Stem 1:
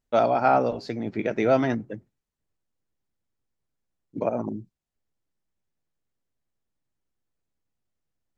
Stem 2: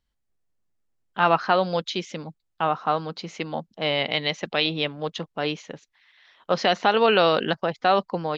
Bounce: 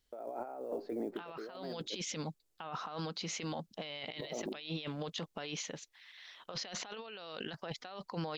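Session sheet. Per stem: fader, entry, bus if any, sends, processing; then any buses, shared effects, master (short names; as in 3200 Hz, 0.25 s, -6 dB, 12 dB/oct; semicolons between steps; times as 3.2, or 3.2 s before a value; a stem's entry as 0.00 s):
+1.0 dB, 0.00 s, no send, ladder band-pass 480 Hz, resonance 35%; short-mantissa float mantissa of 6-bit
-10.5 dB, 0.00 s, no send, wow and flutter 23 cents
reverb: off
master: high shelf 2800 Hz +11.5 dB; negative-ratio compressor -41 dBFS, ratio -1; limiter -29 dBFS, peak gain reduction 9.5 dB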